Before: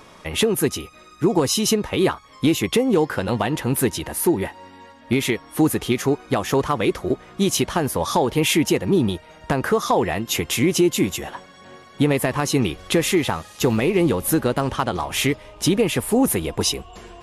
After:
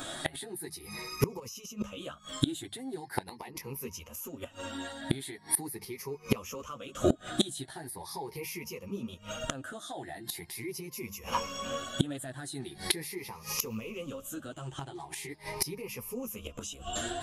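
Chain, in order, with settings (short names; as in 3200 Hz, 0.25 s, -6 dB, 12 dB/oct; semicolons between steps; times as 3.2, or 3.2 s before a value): moving spectral ripple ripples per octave 0.83, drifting +0.41 Hz, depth 15 dB; high shelf 4300 Hz +10.5 dB; de-hum 51.18 Hz, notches 4; 3.08–3.63 harmonic-percussive split harmonic -15 dB; 14.51–15.29 ripple EQ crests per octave 0.74, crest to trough 12 dB; limiter -8 dBFS, peak gain reduction 9.5 dB; 1.39–1.93 negative-ratio compressor -22 dBFS, ratio -1; chorus voices 2, 0.69 Hz, delay 11 ms, depth 3.7 ms; flipped gate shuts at -17 dBFS, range -25 dB; gain +5.5 dB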